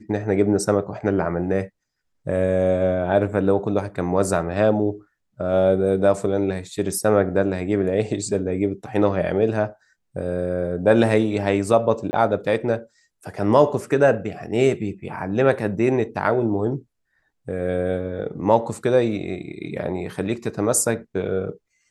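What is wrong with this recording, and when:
0:12.11–0:12.13: drop-out 20 ms

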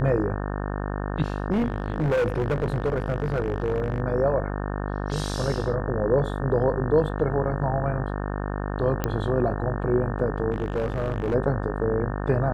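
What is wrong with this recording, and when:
mains buzz 50 Hz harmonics 36 −29 dBFS
0:01.51–0:04.00: clipping −19.5 dBFS
0:09.04: click −11 dBFS
0:10.52–0:11.35: clipping −21 dBFS

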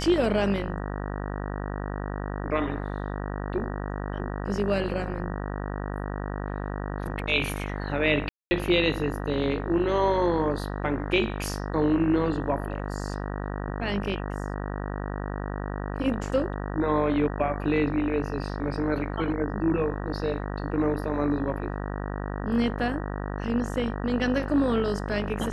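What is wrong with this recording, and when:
mains buzz 50 Hz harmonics 38 −32 dBFS
0:08.29–0:08.51: drop-out 220 ms

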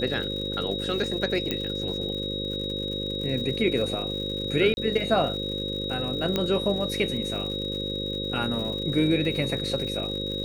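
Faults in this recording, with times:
mains buzz 50 Hz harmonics 11 −33 dBFS
surface crackle 140 per second −35 dBFS
whistle 3,800 Hz −31 dBFS
0:01.51: click −12 dBFS
0:04.74–0:04.77: drop-out 31 ms
0:06.36: click −11 dBFS

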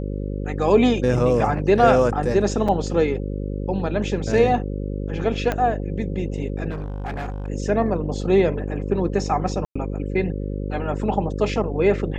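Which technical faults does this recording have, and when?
mains buzz 50 Hz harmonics 11 −27 dBFS
0:02.68: drop-out 4.8 ms
0:05.52: click −10 dBFS
0:06.70–0:07.48: clipping −25 dBFS
0:09.65–0:09.76: drop-out 105 ms

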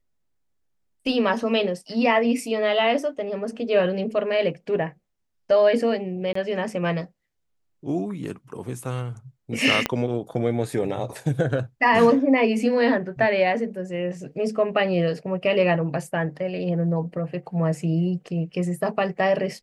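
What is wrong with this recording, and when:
0:06.33–0:06.35: drop-out 24 ms
0:09.86: click −7 dBFS

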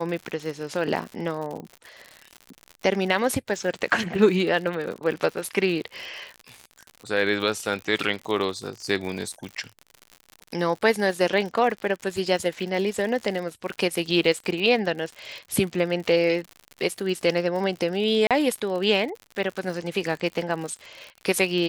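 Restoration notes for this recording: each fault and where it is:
surface crackle 84 per second −31 dBFS
0:18.27–0:18.31: drop-out 37 ms

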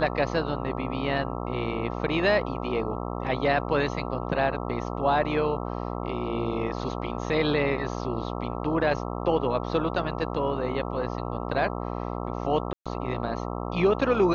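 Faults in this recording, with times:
mains buzz 60 Hz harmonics 22 −32 dBFS
0:12.73–0:12.86: drop-out 126 ms

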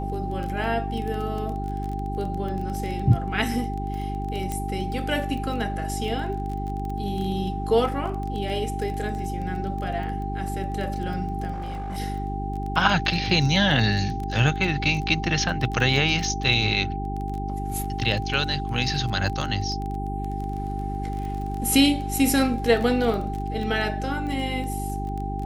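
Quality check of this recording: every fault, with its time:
surface crackle 18 per second −29 dBFS
mains hum 50 Hz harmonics 8 −30 dBFS
whistle 790 Hz −32 dBFS
0:04.52: click −15 dBFS
0:11.52–0:11.98: clipping −27.5 dBFS

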